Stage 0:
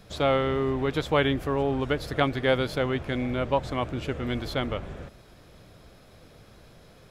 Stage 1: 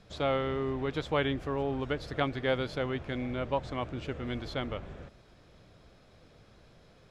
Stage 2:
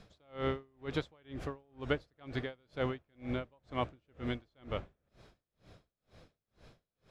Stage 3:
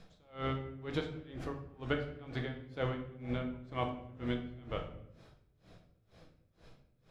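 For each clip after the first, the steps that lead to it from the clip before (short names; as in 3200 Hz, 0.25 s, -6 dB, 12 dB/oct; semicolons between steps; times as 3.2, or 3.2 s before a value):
LPF 7100 Hz 12 dB/oct; gain -6 dB
dB-linear tremolo 2.1 Hz, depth 39 dB; gain +1.5 dB
reverb RT60 0.75 s, pre-delay 6 ms, DRR 3 dB; gain -2 dB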